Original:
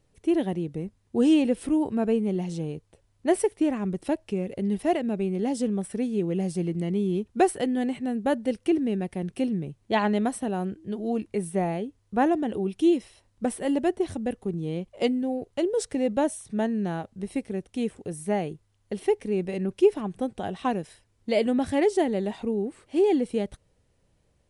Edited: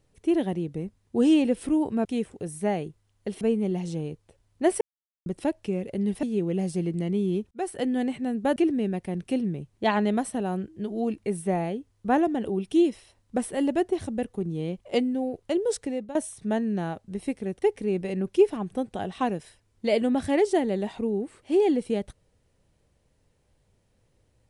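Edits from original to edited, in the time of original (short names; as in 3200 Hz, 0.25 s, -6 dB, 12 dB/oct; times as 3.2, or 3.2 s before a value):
3.45–3.9 mute
4.87–6.04 cut
7.32–7.68 fade in
8.37–8.64 cut
15.82–16.23 fade out, to -18.5 dB
17.7–19.06 move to 2.05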